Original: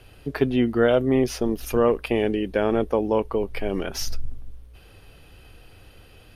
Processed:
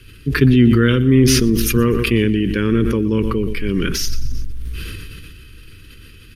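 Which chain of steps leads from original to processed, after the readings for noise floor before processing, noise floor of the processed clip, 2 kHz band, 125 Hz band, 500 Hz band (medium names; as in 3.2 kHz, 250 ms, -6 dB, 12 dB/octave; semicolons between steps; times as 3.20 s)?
-50 dBFS, -41 dBFS, +9.0 dB, +16.0 dB, +1.0 dB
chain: dynamic bell 120 Hz, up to +8 dB, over -39 dBFS, Q 1; Butterworth band-stop 710 Hz, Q 0.69; on a send: feedback delay 121 ms, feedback 38%, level -15.5 dB; on the sum: decay stretcher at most 21 dB/s; trim +6.5 dB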